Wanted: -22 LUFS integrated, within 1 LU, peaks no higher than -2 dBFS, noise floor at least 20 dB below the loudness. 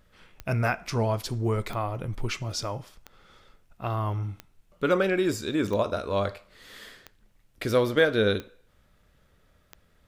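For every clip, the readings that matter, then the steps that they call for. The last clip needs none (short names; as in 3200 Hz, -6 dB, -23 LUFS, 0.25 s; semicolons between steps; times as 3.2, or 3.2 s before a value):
clicks 8; loudness -27.5 LUFS; peak -8.0 dBFS; loudness target -22.0 LUFS
-> de-click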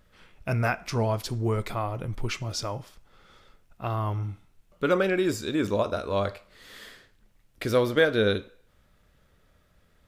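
clicks 0; loudness -27.5 LUFS; peak -8.0 dBFS; loudness target -22.0 LUFS
-> gain +5.5 dB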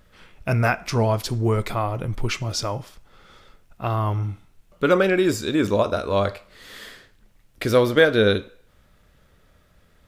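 loudness -22.0 LUFS; peak -2.5 dBFS; noise floor -59 dBFS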